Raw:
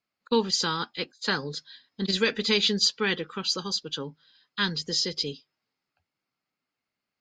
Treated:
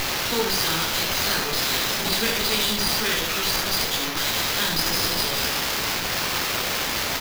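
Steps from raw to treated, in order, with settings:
spike at every zero crossing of −20 dBFS
high-shelf EQ 4,800 Hz +12 dB
brickwall limiter −9 dBFS, peak gain reduction 7 dB
chorus effect 1 Hz, delay 17.5 ms, depth 3 ms
ambience of single reflections 18 ms −4.5 dB, 75 ms −3.5 dB
windowed peak hold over 5 samples

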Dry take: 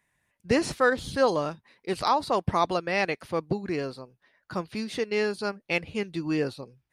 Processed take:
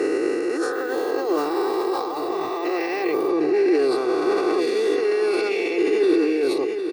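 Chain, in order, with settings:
peak hold with a rise ahead of every peak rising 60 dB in 2.61 s
notch filter 3,100 Hz, Q 25
comb filter 2.6 ms, depth 68%
compressor whose output falls as the input rises −27 dBFS, ratio −1
brickwall limiter −21 dBFS, peak gain reduction 11.5 dB
high-pass with resonance 350 Hz, resonance Q 4.1
repeating echo 755 ms, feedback 35%, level −8.5 dB
0:00.73–0:03.29: bad sample-rate conversion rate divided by 2×, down none, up hold
level that may fall only so fast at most 36 dB per second

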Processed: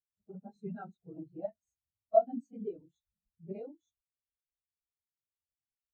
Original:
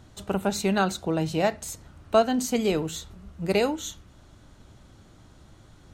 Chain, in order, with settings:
random phases in long frames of 50 ms
every bin expanded away from the loudest bin 2.5 to 1
level −5.5 dB

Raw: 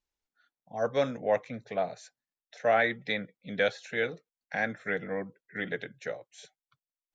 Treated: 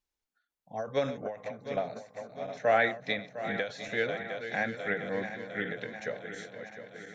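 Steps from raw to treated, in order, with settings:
feedback delay that plays each chunk backwards 353 ms, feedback 77%, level −10.5 dB
every ending faded ahead of time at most 140 dB per second

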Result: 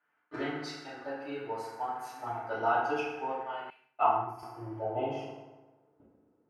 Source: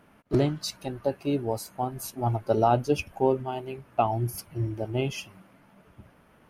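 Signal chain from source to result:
noise gate −45 dBFS, range −14 dB
band-pass filter sweep 1,600 Hz → 380 Hz, 0:03.57–0:06.41
feedback delay network reverb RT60 1.2 s, low-frequency decay 1.05×, high-frequency decay 0.65×, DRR −9 dB
0:03.70–0:04.43: multiband upward and downward expander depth 100%
level −2.5 dB

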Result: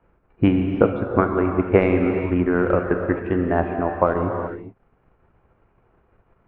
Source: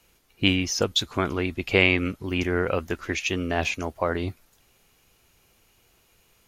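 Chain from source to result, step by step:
low-pass filter 1,500 Hz 24 dB per octave
transient designer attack +4 dB, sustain −11 dB
reverb whose tail is shaped and stops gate 450 ms flat, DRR 3.5 dB
level +4.5 dB

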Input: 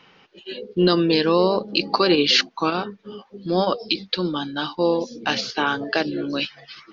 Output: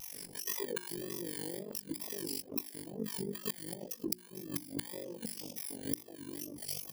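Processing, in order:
samples in bit-reversed order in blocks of 32 samples
parametric band 120 Hz −6 dB 1.1 octaves, from 0:00.88 1,500 Hz
multiband delay without the direct sound highs, lows 130 ms, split 810 Hz
gate with flip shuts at −18 dBFS, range −24 dB
auto-filter notch saw down 3.5 Hz 640–1,600 Hz
tape wow and flutter 120 cents
amplitude modulation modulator 48 Hz, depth 85%
mains-hum notches 60/120/180/240/300/360 Hz
downward compressor 2.5 to 1, threshold −52 dBFS, peak gain reduction 16 dB
level +13 dB

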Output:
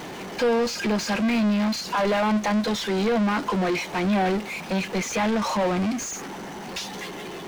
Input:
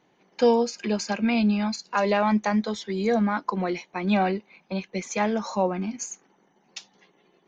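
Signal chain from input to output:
power curve on the samples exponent 0.35
slew-rate limiting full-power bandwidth 370 Hz
level −7 dB

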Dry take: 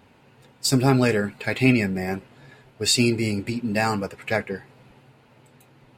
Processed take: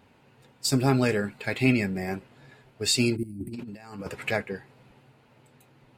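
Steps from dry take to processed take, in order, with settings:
0:03.16–0:03.54: gain on a spectral selection 370–8,100 Hz −26 dB
0:03.23–0:04.31: compressor whose output falls as the input rises −31 dBFS, ratio −0.5
level −4 dB

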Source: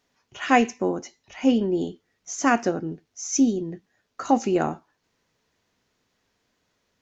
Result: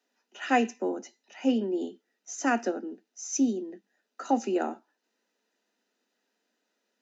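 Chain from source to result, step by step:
Butterworth high-pass 200 Hz 96 dB per octave
notch comb filter 1,100 Hz
level −5 dB

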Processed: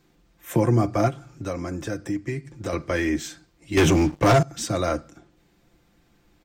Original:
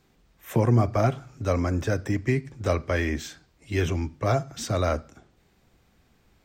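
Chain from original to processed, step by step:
parametric band 300 Hz +9 dB 0.22 octaves
comb filter 5.8 ms, depth 44%
dynamic equaliser 9,000 Hz, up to +6 dB, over −57 dBFS, Q 1
0:01.08–0:02.73: downward compressor 2 to 1, threshold −30 dBFS, peak gain reduction 8 dB
0:03.77–0:04.43: leveller curve on the samples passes 3

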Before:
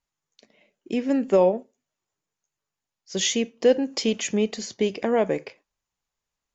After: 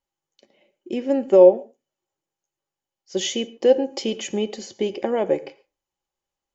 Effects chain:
hollow resonant body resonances 360/540/800/3,000 Hz, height 13 dB, ringing for 60 ms
convolution reverb, pre-delay 49 ms, DRR 18 dB
level −4 dB

